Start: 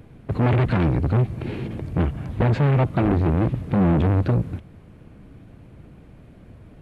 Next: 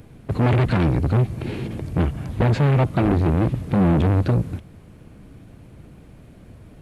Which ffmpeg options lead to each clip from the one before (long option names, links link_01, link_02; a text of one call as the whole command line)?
ffmpeg -i in.wav -af "bass=frequency=250:gain=0,treble=frequency=4000:gain=8,volume=1dB" out.wav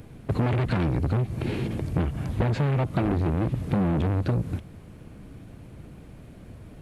ffmpeg -i in.wav -af "acompressor=threshold=-20dB:ratio=6" out.wav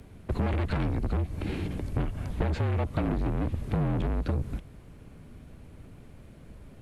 ffmpeg -i in.wav -af "afreqshift=-40,volume=-3.5dB" out.wav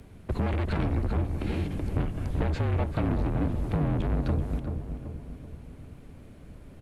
ffmpeg -i in.wav -filter_complex "[0:a]asplit=2[link_01][link_02];[link_02]adelay=383,lowpass=frequency=1200:poles=1,volume=-6dB,asplit=2[link_03][link_04];[link_04]adelay=383,lowpass=frequency=1200:poles=1,volume=0.53,asplit=2[link_05][link_06];[link_06]adelay=383,lowpass=frequency=1200:poles=1,volume=0.53,asplit=2[link_07][link_08];[link_08]adelay=383,lowpass=frequency=1200:poles=1,volume=0.53,asplit=2[link_09][link_10];[link_10]adelay=383,lowpass=frequency=1200:poles=1,volume=0.53,asplit=2[link_11][link_12];[link_12]adelay=383,lowpass=frequency=1200:poles=1,volume=0.53,asplit=2[link_13][link_14];[link_14]adelay=383,lowpass=frequency=1200:poles=1,volume=0.53[link_15];[link_01][link_03][link_05][link_07][link_09][link_11][link_13][link_15]amix=inputs=8:normalize=0" out.wav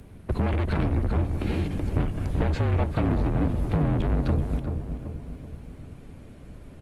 ffmpeg -i in.wav -af "volume=3dB" -ar 48000 -c:a libopus -b:a 32k out.opus